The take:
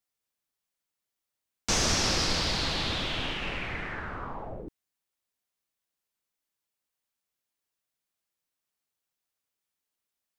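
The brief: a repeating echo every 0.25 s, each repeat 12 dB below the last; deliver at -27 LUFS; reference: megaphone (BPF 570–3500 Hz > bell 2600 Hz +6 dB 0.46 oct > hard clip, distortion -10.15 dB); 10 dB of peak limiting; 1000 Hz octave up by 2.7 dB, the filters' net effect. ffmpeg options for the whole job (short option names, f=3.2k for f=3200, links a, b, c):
-af "equalizer=f=1k:t=o:g=4,alimiter=limit=-22.5dB:level=0:latency=1,highpass=570,lowpass=3.5k,equalizer=f=2.6k:t=o:w=0.46:g=6,aecho=1:1:250|500|750:0.251|0.0628|0.0157,asoftclip=type=hard:threshold=-33.5dB,volume=8.5dB"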